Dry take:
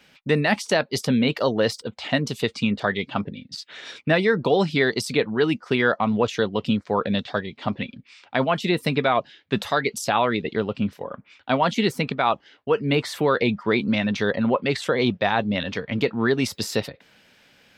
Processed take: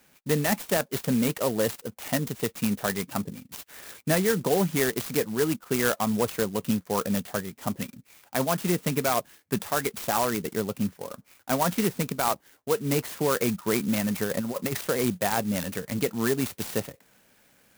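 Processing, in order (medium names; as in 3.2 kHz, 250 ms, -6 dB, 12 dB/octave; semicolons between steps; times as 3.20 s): dynamic bell 180 Hz, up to +5 dB, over -40 dBFS, Q 6.2; 14.24–14.81 s: compressor with a negative ratio -23 dBFS, ratio -0.5; sampling jitter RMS 0.078 ms; trim -4.5 dB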